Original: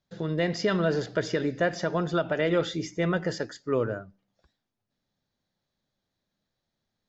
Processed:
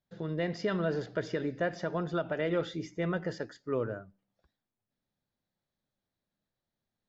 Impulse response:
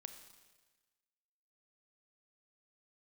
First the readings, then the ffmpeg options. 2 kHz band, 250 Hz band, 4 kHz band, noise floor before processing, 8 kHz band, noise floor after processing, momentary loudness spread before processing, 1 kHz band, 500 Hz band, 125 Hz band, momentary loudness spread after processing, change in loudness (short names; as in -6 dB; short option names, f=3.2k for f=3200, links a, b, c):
-6.5 dB, -5.5 dB, -9.0 dB, -84 dBFS, n/a, under -85 dBFS, 7 LU, -6.0 dB, -5.5 dB, -5.5 dB, 7 LU, -6.0 dB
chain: -af "lowpass=f=3.2k:p=1,volume=-5.5dB"